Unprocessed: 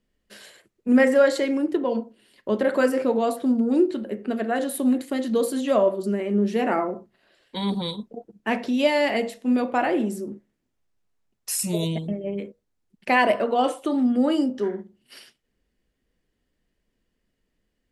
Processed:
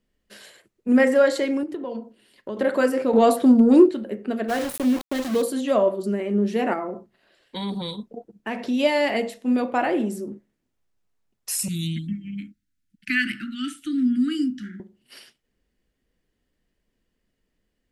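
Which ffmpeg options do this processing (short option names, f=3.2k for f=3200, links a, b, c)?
-filter_complex "[0:a]asettb=1/sr,asplit=3[a][b][c];[a]atrim=end=1.634[d];[b]atrim=start=1.63:end=2.57,asetpts=PTS-STARTPTS,afade=t=in:d=0.004:c=qsin,afade=t=out:st=0.936:d=0.004:c=qsin,acompressor=threshold=-29dB:ratio=3:attack=3.2:release=140:knee=1:detection=peak[e];[c]atrim=start=2.566[f];[d][e]acrossfade=d=0.004:c1=hsin:c2=qsin[g];[g][f]acrossfade=d=0.004:c1=qsin:c2=hsin,asettb=1/sr,asplit=3[h][i][j];[h]atrim=end=3.134[k];[i]atrim=start=3.13:end=3.89,asetpts=PTS-STARTPTS,afade=t=in:d=0.004:c=qsin,afade=t=out:st=0.756:d=0.004:c=qsin,acontrast=90[l];[j]atrim=start=3.886[m];[k][l]acrossfade=d=0.004:c1=hsin:c2=qsin[n];[n][m]acrossfade=d=0.004:c1=qsin:c2=hsin,asplit=3[o][p][q];[o]afade=t=out:st=4.48:d=0.02[r];[p]aeval=exprs='val(0)*gte(abs(val(0)),0.0398)':c=same,afade=t=in:st=4.48:d=0.02,afade=t=out:st=5.41:d=0.02[s];[q]afade=t=in:st=5.41:d=0.02[t];[r][s][t]amix=inputs=3:normalize=0,asettb=1/sr,asplit=3[u][v][w];[u]atrim=end=6.734[x];[v]atrim=start=6.73:end=8.59,asetpts=PTS-STARTPTS,afade=t=in:d=0.004:c=qsin,afade=t=out:st=1.856:d=0.004:c=qsin,acompressor=threshold=-27dB:ratio=2:attack=3.2:release=140:knee=1:detection=peak[y];[w]atrim=start=8.586[z];[x][y]acrossfade=d=0.004:c1=hsin:c2=qsin[aa];[aa][z]acrossfade=d=0.004:c1=qsin:c2=hsin,asettb=1/sr,asplit=3[ab][ac][ad];[ab]atrim=end=11.684[ae];[ac]atrim=start=11.68:end=14.8,asetpts=PTS-STARTPTS,afade=t=in:d=0.004:c=qsin,afade=t=out:st=3.116:d=0.004:c=qsin,asuperstop=centerf=650:order=20:qfactor=0.63[af];[ad]atrim=start=14.796[ag];[ae][af]acrossfade=d=0.004:c1=hsin:c2=qsin[ah];[ah][ag]acrossfade=d=0.004:c1=qsin:c2=hsin"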